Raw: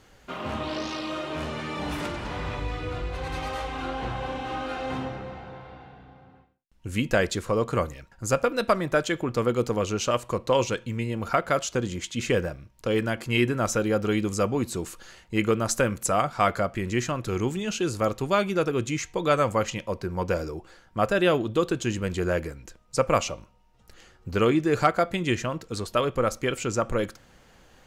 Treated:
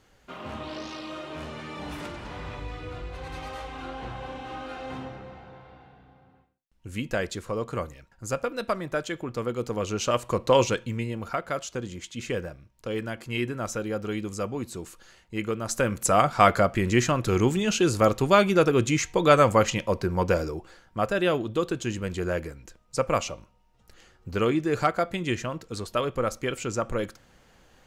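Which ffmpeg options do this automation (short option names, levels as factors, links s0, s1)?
-af "volume=4.73,afade=t=in:st=9.6:d=0.98:silence=0.375837,afade=t=out:st=10.58:d=0.75:silence=0.354813,afade=t=in:st=15.62:d=0.68:silence=0.298538,afade=t=out:st=19.99:d=1.06:silence=0.446684"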